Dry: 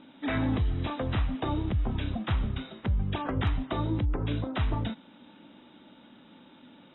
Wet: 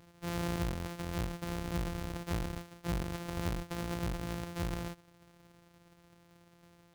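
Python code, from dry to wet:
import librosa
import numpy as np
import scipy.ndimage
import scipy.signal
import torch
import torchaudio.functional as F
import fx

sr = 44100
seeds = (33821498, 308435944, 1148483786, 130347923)

y = np.r_[np.sort(x[:len(x) // 256 * 256].reshape(-1, 256), axis=1).ravel(), x[len(x) // 256 * 256:]]
y = fx.rider(y, sr, range_db=10, speed_s=2.0)
y = y * 10.0 ** (-8.5 / 20.0)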